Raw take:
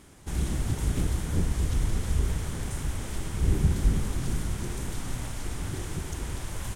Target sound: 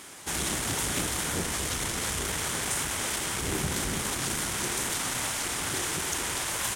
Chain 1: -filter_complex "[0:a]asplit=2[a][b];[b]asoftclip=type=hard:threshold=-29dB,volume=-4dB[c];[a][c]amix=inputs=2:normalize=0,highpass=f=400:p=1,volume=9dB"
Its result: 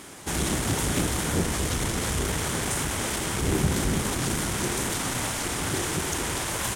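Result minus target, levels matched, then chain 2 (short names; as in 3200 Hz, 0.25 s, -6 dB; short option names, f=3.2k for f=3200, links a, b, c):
500 Hz band +3.5 dB
-filter_complex "[0:a]asplit=2[a][b];[b]asoftclip=type=hard:threshold=-29dB,volume=-4dB[c];[a][c]amix=inputs=2:normalize=0,highpass=f=1.1k:p=1,volume=9dB"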